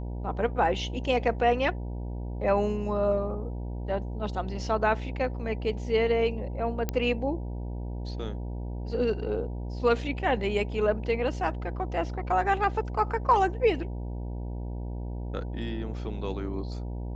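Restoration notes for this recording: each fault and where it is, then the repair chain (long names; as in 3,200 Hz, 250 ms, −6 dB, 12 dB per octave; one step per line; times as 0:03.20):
mains buzz 60 Hz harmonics 16 −34 dBFS
0:06.89: click −14 dBFS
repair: click removal
hum removal 60 Hz, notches 16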